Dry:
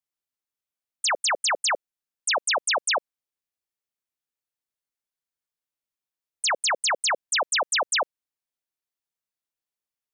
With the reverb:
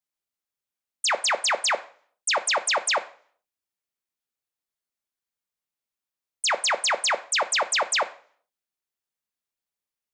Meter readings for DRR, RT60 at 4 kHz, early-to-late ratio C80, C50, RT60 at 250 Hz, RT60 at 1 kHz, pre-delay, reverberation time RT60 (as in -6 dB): 9.0 dB, 0.45 s, 20.0 dB, 16.0 dB, 0.60 s, 0.50 s, 3 ms, 0.50 s